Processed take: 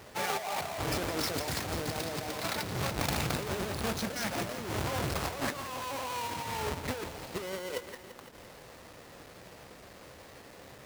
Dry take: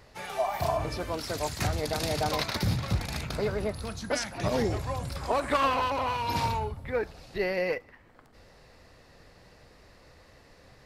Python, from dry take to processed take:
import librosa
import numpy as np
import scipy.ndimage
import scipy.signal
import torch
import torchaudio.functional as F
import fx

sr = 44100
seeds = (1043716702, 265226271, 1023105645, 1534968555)

y = fx.halfwave_hold(x, sr)
y = fx.highpass(y, sr, hz=220.0, slope=6)
y = fx.over_compress(y, sr, threshold_db=-33.0, ratio=-1.0)
y = fx.echo_crushed(y, sr, ms=170, feedback_pct=80, bits=8, wet_db=-12.0)
y = y * librosa.db_to_amplitude(-2.5)